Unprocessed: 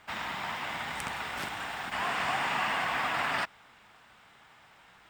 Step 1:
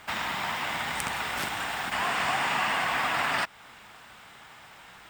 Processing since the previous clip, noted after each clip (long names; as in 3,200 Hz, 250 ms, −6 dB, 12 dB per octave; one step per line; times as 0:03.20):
high-shelf EQ 6,300 Hz +6.5 dB
in parallel at +2.5 dB: downward compressor, threshold −39 dBFS, peak gain reduction 12.5 dB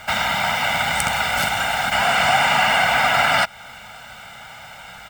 comb filter 1.4 ms, depth 85%
level +8 dB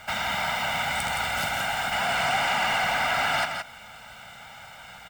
soft clipping −13 dBFS, distortion −16 dB
single-tap delay 169 ms −6 dB
level −6.5 dB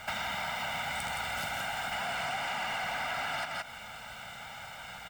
downward compressor 5 to 1, threshold −33 dBFS, peak gain reduction 11 dB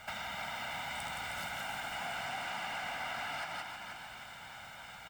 echo with shifted repeats 313 ms, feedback 54%, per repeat +37 Hz, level −6.5 dB
level −6 dB